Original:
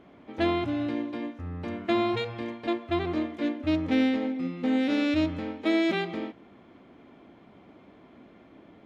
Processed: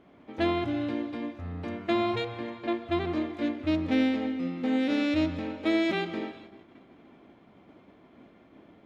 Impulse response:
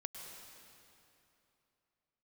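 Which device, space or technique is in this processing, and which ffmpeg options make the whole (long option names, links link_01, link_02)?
keyed gated reverb: -filter_complex "[0:a]asettb=1/sr,asplit=3[link_01][link_02][link_03];[link_01]atrim=end=2.254[link_04];[link_02]atrim=start=2.25:end=2.74,asetpts=PTS-STARTPTS,afade=type=in:duration=0.004:curve=qsin,afade=type=out:start_time=0.486:duration=0.004:curve=qsin,bass=frequency=250:gain=-2,treble=frequency=4000:gain=-8[link_05];[link_03]atrim=start=2.736[link_06];[link_04][link_05]acrossfade=duration=0.004:curve1=hsin:curve2=qsin[link_07];[link_07][link_06]acrossfade=duration=0.004:curve1=qsin:curve2=hsin,asplit=3[link_08][link_09][link_10];[1:a]atrim=start_sample=2205[link_11];[link_09][link_11]afir=irnorm=-1:irlink=0[link_12];[link_10]apad=whole_len=390639[link_13];[link_12][link_13]sidechaingate=range=-33dB:threshold=-51dB:ratio=16:detection=peak,volume=-3.5dB[link_14];[link_08][link_14]amix=inputs=2:normalize=0,volume=-4dB"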